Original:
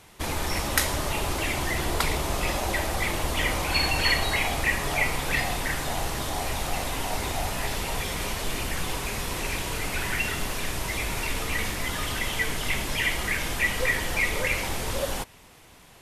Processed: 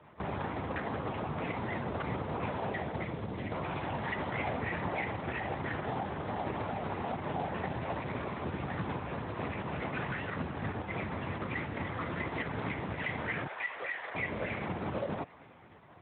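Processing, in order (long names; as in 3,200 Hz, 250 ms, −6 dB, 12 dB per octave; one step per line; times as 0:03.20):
running median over 15 samples
feedback echo with a high-pass in the loop 201 ms, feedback 74%, high-pass 940 Hz, level −21 dB
downward compressor 4 to 1, threshold −31 dBFS, peak gain reduction 8 dB
0:02.62–0:03.51: parametric band 1,300 Hz +0.5 dB → −10.5 dB 2.3 octaves
0:04.32–0:04.87: comb filter 7 ms, depth 61%
linear-prediction vocoder at 8 kHz whisper
0:13.47–0:14.15: Bessel high-pass filter 710 Hz, order 6
Speex 15 kbit/s 8,000 Hz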